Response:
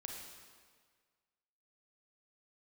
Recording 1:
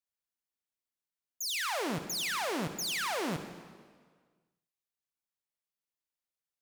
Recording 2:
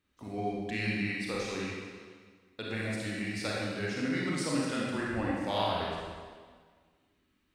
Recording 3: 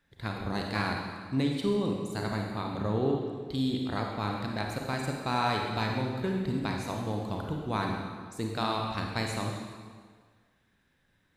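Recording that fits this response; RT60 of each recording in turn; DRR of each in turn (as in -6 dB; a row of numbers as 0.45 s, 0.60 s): 3; 1.7 s, 1.7 s, 1.7 s; 8.5 dB, -5.0 dB, 0.5 dB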